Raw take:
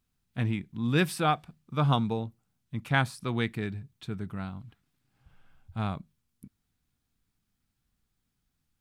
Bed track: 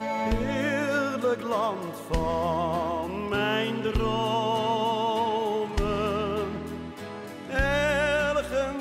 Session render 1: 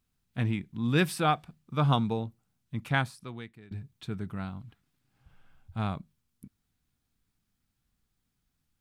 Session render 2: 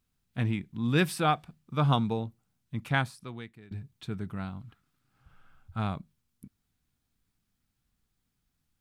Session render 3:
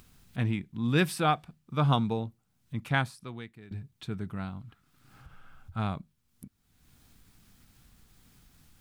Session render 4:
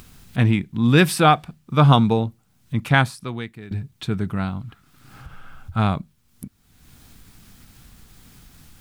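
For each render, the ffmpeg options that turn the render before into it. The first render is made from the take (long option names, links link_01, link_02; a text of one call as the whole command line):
ffmpeg -i in.wav -filter_complex "[0:a]asplit=2[link_01][link_02];[link_01]atrim=end=3.71,asetpts=PTS-STARTPTS,afade=type=out:start_time=2.87:duration=0.84:curve=qua:silence=0.1[link_03];[link_02]atrim=start=3.71,asetpts=PTS-STARTPTS,afade=type=in:duration=0.004:curve=hsin:silence=0.1[link_04];[link_03][link_04]concat=n=2:v=0:a=1" out.wav
ffmpeg -i in.wav -filter_complex "[0:a]asettb=1/sr,asplit=3[link_01][link_02][link_03];[link_01]atrim=end=4.624[link_04];[link_02]atrim=start=4.62:end=5.8,asetpts=PTS-STARTPTS,afade=type=in:duration=0.004:curve=qsin,afade=type=out:start_time=1.176:duration=0.004:curve=qsin,equalizer=frequency=1300:width=4.1:gain=10[link_05];[link_03]atrim=start=5.796[link_06];[link_04][link_05]acrossfade=duration=0.004:curve1=hsin:curve2=qsin[link_07];[link_07][link_06]acrossfade=duration=0.004:curve1=qsin:curve2=hsin" out.wav
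ffmpeg -i in.wav -af "acompressor=mode=upward:threshold=-42dB:ratio=2.5" out.wav
ffmpeg -i in.wav -af "volume=11.5dB,alimiter=limit=-3dB:level=0:latency=1" out.wav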